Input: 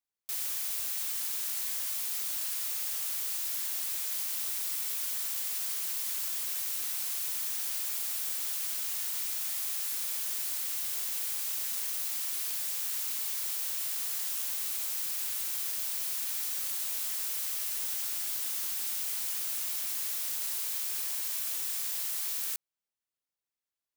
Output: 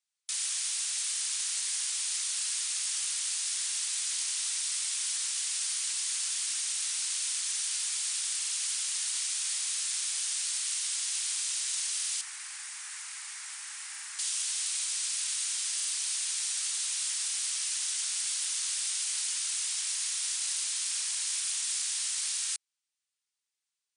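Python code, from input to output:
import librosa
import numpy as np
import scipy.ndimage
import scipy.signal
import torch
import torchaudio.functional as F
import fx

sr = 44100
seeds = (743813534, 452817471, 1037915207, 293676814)

y = fx.high_shelf_res(x, sr, hz=2500.0, db=-9.0, q=1.5, at=(12.21, 14.19))
y = fx.brickwall_bandpass(y, sr, low_hz=750.0, high_hz=10000.0)
y = fx.tilt_shelf(y, sr, db=-9.0, hz=1300.0)
y = fx.buffer_glitch(y, sr, at_s=(8.38, 11.96, 13.9, 15.75), block=2048, repeats=2)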